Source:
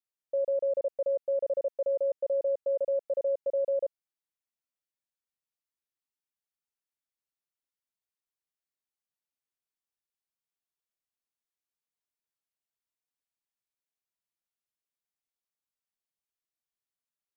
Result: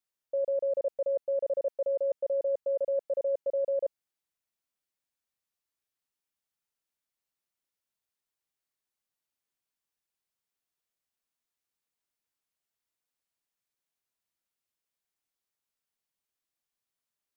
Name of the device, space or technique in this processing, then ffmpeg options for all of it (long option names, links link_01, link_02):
compression on the reversed sound: -af "areverse,acompressor=threshold=-30dB:ratio=6,areverse,volume=3.5dB"